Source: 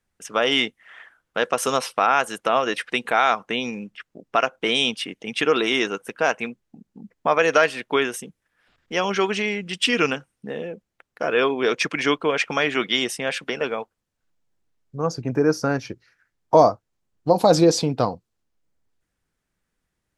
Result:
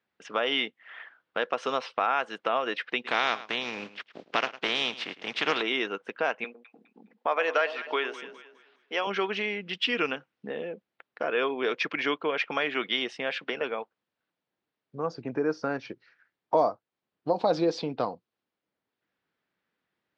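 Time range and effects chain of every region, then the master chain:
3.04–5.61 s: spectral contrast reduction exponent 0.45 + delay 106 ms -17.5 dB
6.44–9.07 s: high-pass 390 Hz + echo whose repeats swap between lows and highs 103 ms, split 900 Hz, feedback 55%, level -11.5 dB
whole clip: low-pass 4.2 kHz 24 dB/octave; compression 1.5:1, threshold -34 dBFS; Bessel high-pass 270 Hz, order 2

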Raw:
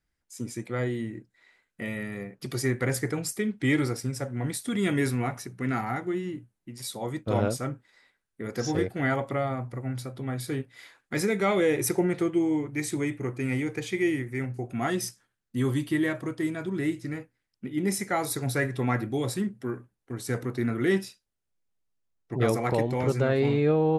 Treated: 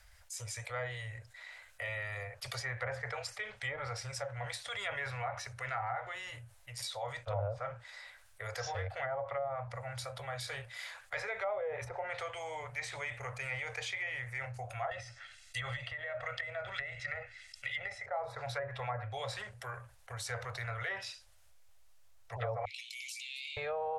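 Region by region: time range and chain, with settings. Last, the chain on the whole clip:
14.91–18.06 s: high-order bell 4 kHz +15.5 dB 2.9 oct + comb 1.5 ms, depth 62% + compression 10:1, threshold -22 dBFS
22.65–23.57 s: steep high-pass 2.3 kHz 96 dB/octave + compression 2.5:1, threshold -46 dBFS
whole clip: elliptic band-stop 100–570 Hz, stop band 40 dB; low-pass that closes with the level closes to 780 Hz, closed at -26.5 dBFS; level flattener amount 50%; trim -6.5 dB

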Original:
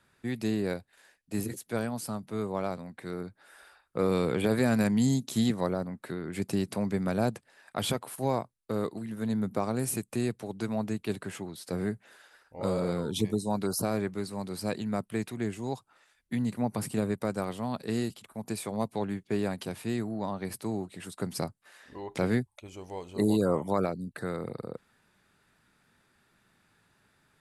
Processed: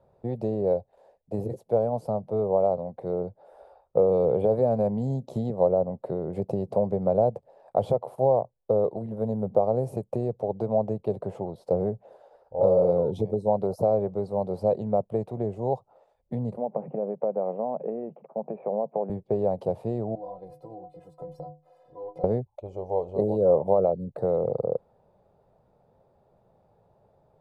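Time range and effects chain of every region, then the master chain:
9.18–9.59 s: careless resampling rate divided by 4×, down filtered, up hold + tape noise reduction on one side only encoder only
16.57–19.10 s: compression 5:1, threshold -33 dBFS + Chebyshev band-pass 150–2500 Hz, order 5
20.15–22.24 s: companding laws mixed up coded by mu + inharmonic resonator 150 Hz, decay 0.31 s, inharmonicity 0.03 + compression, threshold -44 dBFS
whole clip: compression 3:1, threshold -30 dBFS; FFT filter 140 Hz 0 dB, 290 Hz -9 dB, 530 Hz +11 dB, 810 Hz +4 dB, 1.6 kHz -25 dB, 4.3 kHz -23 dB, 8.4 kHz -29 dB; trim +7 dB

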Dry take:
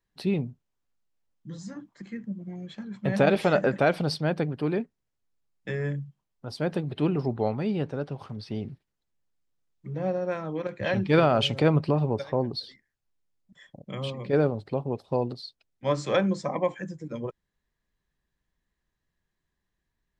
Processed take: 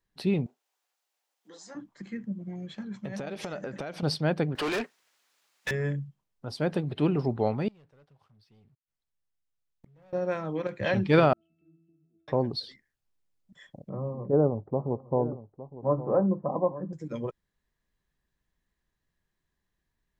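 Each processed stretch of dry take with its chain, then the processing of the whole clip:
0.46–1.75 s: high-pass 380 Hz 24 dB/octave + peaking EQ 780 Hz +7 dB 0.4 oct + tape noise reduction on one side only encoder only
2.94–4.03 s: peaking EQ 6.1 kHz +9.5 dB 0.36 oct + compression 10:1, threshold -32 dBFS
4.55–5.71 s: high-pass 1.1 kHz 6 dB/octave + overdrive pedal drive 31 dB, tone 5.2 kHz, clips at -22 dBFS
7.68–10.13 s: peaking EQ 300 Hz -7 dB 1.8 oct + waveshaping leveller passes 3 + inverted gate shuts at -38 dBFS, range -32 dB
11.33–12.28 s: vowel filter i + compression 5:1, threshold -41 dBFS + pitch-class resonator E, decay 0.75 s
13.89–16.93 s: steep low-pass 1.1 kHz + delay 861 ms -14.5 dB
whole clip: none

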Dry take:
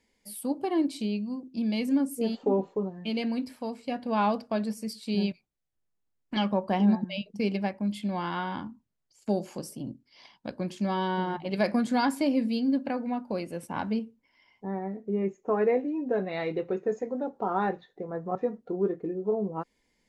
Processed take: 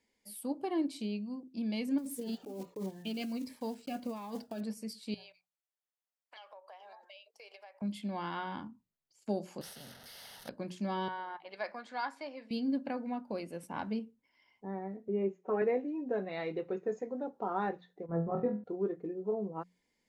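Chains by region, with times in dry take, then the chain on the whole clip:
1.98–4.62 s: block-companded coder 5-bit + compressor with a negative ratio -31 dBFS + Shepard-style phaser falling 1.4 Hz
5.14–7.82 s: steep high-pass 540 Hz + compression, threshold -44 dBFS
9.61–10.49 s: one-bit delta coder 64 kbps, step -46 dBFS + static phaser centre 1.6 kHz, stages 8 + spectrum-flattening compressor 2:1
11.08–12.51 s: band-pass 800–3700 Hz + dynamic bell 2.9 kHz, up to -6 dB, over -51 dBFS, Q 2
15.08–15.62 s: band-pass 240–3800 Hz + comb 5.3 ms, depth 81%
18.06–18.64 s: gate -40 dBFS, range -12 dB + tone controls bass +12 dB, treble -12 dB + flutter echo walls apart 4.1 m, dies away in 0.32 s
whole clip: bass shelf 60 Hz -10 dB; hum notches 60/120/180 Hz; trim -6 dB

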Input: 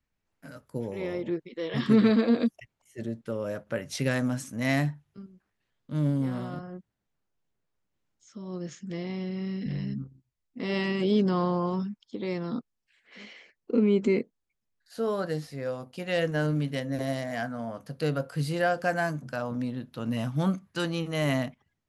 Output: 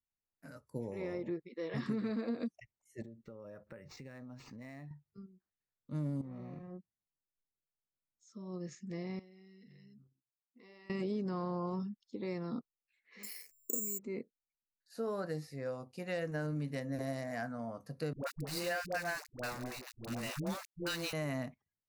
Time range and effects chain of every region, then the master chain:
3.02–4.91 s: compression 10:1, threshold -39 dBFS + decimation joined by straight lines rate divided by 4×
6.21–6.71 s: median filter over 41 samples + low-pass 3.3 kHz 6 dB/octave + compression 10:1, threshold -35 dBFS
9.19–10.90 s: high-pass 460 Hz 6 dB/octave + compression, threshold -49 dBFS
13.23–13.99 s: dynamic bell 3.5 kHz, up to +5 dB, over -55 dBFS, Q 1.3 + hysteresis with a dead band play -51.5 dBFS + careless resampling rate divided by 6×, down filtered, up zero stuff
18.13–21.13 s: frequency weighting D + small samples zeroed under -29.5 dBFS + phase dispersion highs, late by 106 ms, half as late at 500 Hz
whole clip: spectral noise reduction 12 dB; peaking EQ 3.2 kHz -15 dB 0.26 oct; compression 10:1, threshold -26 dBFS; trim -6.5 dB

